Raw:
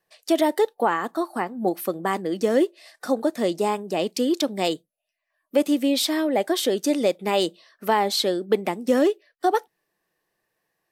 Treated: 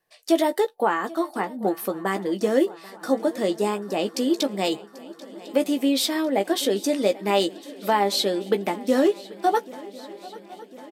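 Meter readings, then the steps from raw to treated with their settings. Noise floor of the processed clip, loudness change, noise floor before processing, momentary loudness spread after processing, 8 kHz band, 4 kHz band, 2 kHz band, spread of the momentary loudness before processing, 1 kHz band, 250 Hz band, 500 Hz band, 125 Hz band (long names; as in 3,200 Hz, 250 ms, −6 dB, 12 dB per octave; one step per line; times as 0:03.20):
−49 dBFS, −0.5 dB, −79 dBFS, 18 LU, 0.0 dB, 0.0 dB, 0.0 dB, 6 LU, 0.0 dB, −0.5 dB, −0.5 dB, 0.0 dB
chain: double-tracking delay 15 ms −7.5 dB
feedback echo with a long and a short gap by turns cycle 1,051 ms, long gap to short 3 to 1, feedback 63%, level −20.5 dB
level −1 dB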